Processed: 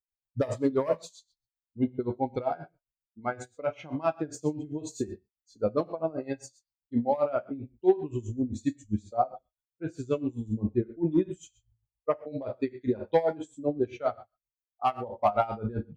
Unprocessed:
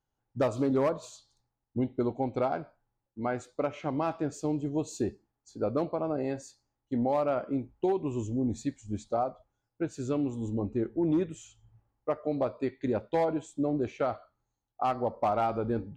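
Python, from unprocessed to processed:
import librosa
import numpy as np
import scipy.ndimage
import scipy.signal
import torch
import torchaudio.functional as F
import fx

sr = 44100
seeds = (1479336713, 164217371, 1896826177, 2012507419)

y = fx.bin_expand(x, sr, power=1.5)
y = fx.rev_gated(y, sr, seeds[0], gate_ms=160, shape='falling', drr_db=7.0)
y = y * 10.0 ** (-19 * (0.5 - 0.5 * np.cos(2.0 * np.pi * 7.6 * np.arange(len(y)) / sr)) / 20.0)
y = y * librosa.db_to_amplitude(8.0)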